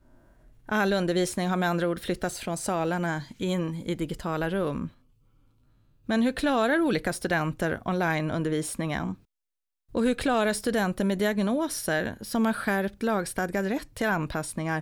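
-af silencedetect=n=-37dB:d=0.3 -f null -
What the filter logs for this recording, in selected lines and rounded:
silence_start: 0.00
silence_end: 0.69 | silence_duration: 0.69
silence_start: 4.88
silence_end: 6.09 | silence_duration: 1.21
silence_start: 9.14
silence_end: 9.95 | silence_duration: 0.81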